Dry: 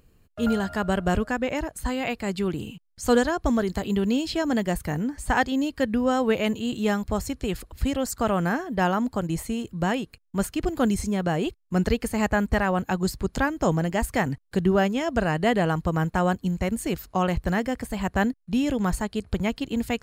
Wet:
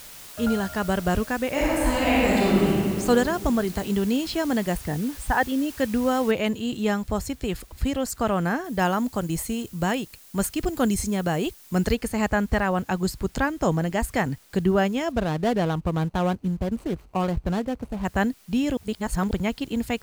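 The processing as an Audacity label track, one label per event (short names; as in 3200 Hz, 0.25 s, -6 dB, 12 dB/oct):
1.500000	2.700000	reverb throw, RT60 2.6 s, DRR -7.5 dB
4.770000	5.790000	formant sharpening exponent 1.5
6.310000	6.310000	noise floor step -43 dB -56 dB
8.640000	11.950000	high shelf 5700 Hz +8 dB
15.120000	18.050000	median filter over 25 samples
18.770000	19.310000	reverse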